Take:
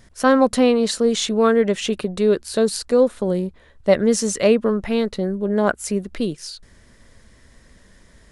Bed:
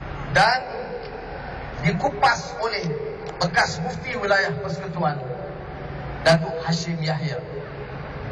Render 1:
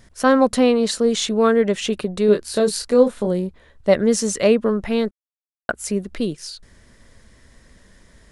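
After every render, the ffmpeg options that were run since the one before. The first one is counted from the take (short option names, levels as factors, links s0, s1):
-filter_complex "[0:a]asettb=1/sr,asplit=3[s0][s1][s2];[s0]atrim=end=2.264[s3];[s1]atrim=start=2.26:end=3.27,asetpts=PTS-STARTPTS,afade=t=in:d=0.004:c=qsin,afade=t=out:st=1.006:d=0.004:c=qsin,asplit=2[s4][s5];[s5]adelay=24,volume=0.531[s6];[s4][s6]amix=inputs=2:normalize=0,atrim=end_sample=44541[s7];[s2]atrim=start=3.266[s8];[s3][s7]acrossfade=d=0.004:c1=hsin:c2=qsin[s9];[s9][s8]acrossfade=d=0.004:c1=qsin:c2=hsin,asplit=3[s10][s11][s12];[s10]atrim=end=5.11,asetpts=PTS-STARTPTS,afade=t=out:st=5.106:d=0.004:c=hsin[s13];[s11]atrim=start=5.11:end=5.69,asetpts=PTS-STARTPTS,volume=0[s14];[s12]atrim=start=5.69,asetpts=PTS-STARTPTS,afade=t=in:d=0.004:c=hsin[s15];[s13][s14][s15]concat=n=3:v=0:a=1"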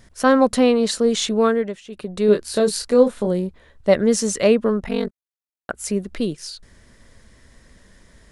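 -filter_complex "[0:a]asplit=3[s0][s1][s2];[s0]afade=t=out:st=4.8:d=0.02[s3];[s1]aeval=exprs='val(0)*sin(2*PI*23*n/s)':c=same,afade=t=in:st=4.8:d=0.02,afade=t=out:st=5.73:d=0.02[s4];[s2]afade=t=in:st=5.73:d=0.02[s5];[s3][s4][s5]amix=inputs=3:normalize=0,asplit=3[s6][s7][s8];[s6]atrim=end=1.83,asetpts=PTS-STARTPTS,afade=t=out:st=1.4:d=0.43:silence=0.0891251[s9];[s7]atrim=start=1.83:end=1.85,asetpts=PTS-STARTPTS,volume=0.0891[s10];[s8]atrim=start=1.85,asetpts=PTS-STARTPTS,afade=t=in:d=0.43:silence=0.0891251[s11];[s9][s10][s11]concat=n=3:v=0:a=1"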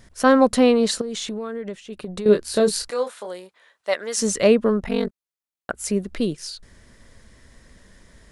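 -filter_complex "[0:a]asettb=1/sr,asplit=3[s0][s1][s2];[s0]atrim=end=1.014[s3];[s1]atrim=start=1.01:end=2.26,asetpts=PTS-STARTPTS,afade=t=in:d=0.004:c=qsin,afade=t=out:st=1.246:d=0.004:c=qsin,acompressor=threshold=0.0562:ratio=16:attack=3.2:release=140:knee=1:detection=peak[s4];[s2]atrim=start=2.256[s5];[s3][s4]acrossfade=d=0.004:c1=hsin:c2=qsin[s6];[s6][s5]acrossfade=d=0.004:c1=qsin:c2=hsin,asettb=1/sr,asplit=3[s7][s8][s9];[s7]atrim=end=2.904[s10];[s8]atrim=start=2.9:end=4.18,asetpts=PTS-STARTPTS,afade=t=in:d=0.004:c=qsin,afade=t=out:st=1.276:d=0.004:c=qsin,highpass=870[s11];[s9]atrim=start=4.176[s12];[s10][s11]acrossfade=d=0.004:c1=hsin:c2=qsin[s13];[s13][s12]acrossfade=d=0.004:c1=qsin:c2=hsin"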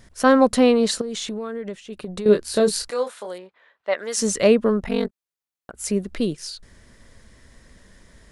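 -filter_complex "[0:a]asettb=1/sr,asplit=3[s0][s1][s2];[s0]atrim=end=3.384[s3];[s1]atrim=start=3.38:end=3.98,asetpts=PTS-STARTPTS,afade=t=in:d=0.004:c=qsin,afade=t=out:st=0.596:d=0.004:c=qsin,lowpass=2800[s4];[s2]atrim=start=3.976[s5];[s3][s4]acrossfade=d=0.004:c1=hsin:c2=qsin[s6];[s6][s5]acrossfade=d=0.004:c1=qsin:c2=hsin,asettb=1/sr,asplit=3[s7][s8][s9];[s7]atrim=end=5.064[s10];[s8]atrim=start=5.06:end=5.74,asetpts=PTS-STARTPTS,afade=t=in:d=0.004:c=qsin,afade=t=out:st=0.676:d=0.004:c=qsin,acompressor=threshold=0.0158:ratio=4:attack=3.2:release=140:knee=1:detection=peak[s11];[s9]atrim=start=5.736[s12];[s10][s11]acrossfade=d=0.004:c1=hsin:c2=qsin[s13];[s13][s12]acrossfade=d=0.004:c1=qsin:c2=hsin"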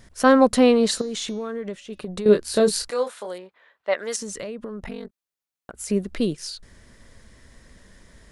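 -filter_complex "[0:a]asplit=3[s0][s1][s2];[s0]afade=t=out:st=0.7:d=0.02[s3];[s1]bandreject=f=284.6:t=h:w=4,bandreject=f=569.2:t=h:w=4,bandreject=f=853.8:t=h:w=4,bandreject=f=1138.4:t=h:w=4,bandreject=f=1423:t=h:w=4,bandreject=f=1707.6:t=h:w=4,bandreject=f=1992.2:t=h:w=4,bandreject=f=2276.8:t=h:w=4,bandreject=f=2561.4:t=h:w=4,bandreject=f=2846:t=h:w=4,bandreject=f=3130.6:t=h:w=4,bandreject=f=3415.2:t=h:w=4,bandreject=f=3699.8:t=h:w=4,bandreject=f=3984.4:t=h:w=4,bandreject=f=4269:t=h:w=4,bandreject=f=4553.6:t=h:w=4,bandreject=f=4838.2:t=h:w=4,bandreject=f=5122.8:t=h:w=4,bandreject=f=5407.4:t=h:w=4,bandreject=f=5692:t=h:w=4,bandreject=f=5976.6:t=h:w=4,bandreject=f=6261.2:t=h:w=4,bandreject=f=6545.8:t=h:w=4,bandreject=f=6830.4:t=h:w=4,afade=t=in:st=0.7:d=0.02,afade=t=out:st=2.05:d=0.02[s4];[s2]afade=t=in:st=2.05:d=0.02[s5];[s3][s4][s5]amix=inputs=3:normalize=0,asettb=1/sr,asplit=3[s6][s7][s8];[s6]atrim=end=4.164[s9];[s7]atrim=start=4.16:end=5.9,asetpts=PTS-STARTPTS,afade=t=in:d=0.004:c=qsin,afade=t=out:st=1.736:d=0.004:c=qsin,acompressor=threshold=0.0355:ratio=16:attack=3.2:release=140:knee=1:detection=peak[s10];[s8]atrim=start=5.896[s11];[s9][s10]acrossfade=d=0.004:c1=hsin:c2=qsin[s12];[s12][s11]acrossfade=d=0.004:c1=qsin:c2=hsin"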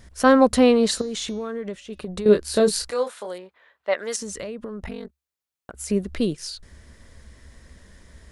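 -af "equalizer=f=69:w=3.7:g=11.5"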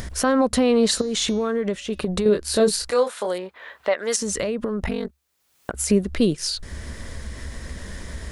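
-filter_complex "[0:a]asplit=2[s0][s1];[s1]acompressor=mode=upward:threshold=0.0891:ratio=2.5,volume=0.891[s2];[s0][s2]amix=inputs=2:normalize=0,alimiter=limit=0.355:level=0:latency=1:release=217"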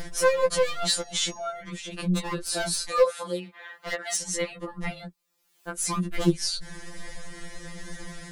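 -af "aeval=exprs='0.237*(abs(mod(val(0)/0.237+3,4)-2)-1)':c=same,afftfilt=real='re*2.83*eq(mod(b,8),0)':imag='im*2.83*eq(mod(b,8),0)':win_size=2048:overlap=0.75"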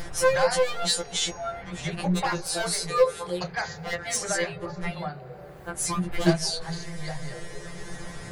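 -filter_complex "[1:a]volume=0.266[s0];[0:a][s0]amix=inputs=2:normalize=0"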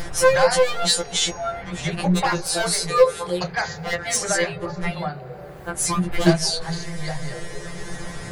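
-af "volume=1.88,alimiter=limit=0.708:level=0:latency=1"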